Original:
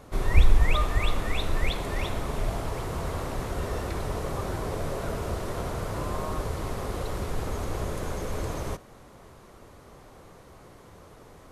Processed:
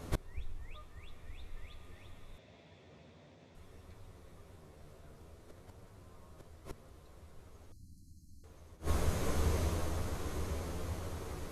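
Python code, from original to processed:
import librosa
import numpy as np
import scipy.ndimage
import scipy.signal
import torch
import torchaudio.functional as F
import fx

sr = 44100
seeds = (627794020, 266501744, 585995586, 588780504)

y = fx.peak_eq(x, sr, hz=860.0, db=-4.5, octaves=2.3)
y = fx.echo_diffused(y, sr, ms=1005, feedback_pct=48, wet_db=-5)
y = fx.chorus_voices(y, sr, voices=2, hz=0.51, base_ms=12, depth_ms=1.4, mix_pct=35)
y = fx.gate_flip(y, sr, shuts_db=-25.0, range_db=-29)
y = fx.cabinet(y, sr, low_hz=100.0, low_slope=24, high_hz=6400.0, hz=(250.0, 560.0, 1200.0), db=(4, 4, -7), at=(2.38, 3.55))
y = fx.brickwall_bandstop(y, sr, low_hz=330.0, high_hz=4000.0, at=(7.72, 8.44))
y = y * librosa.db_to_amplitude(6.0)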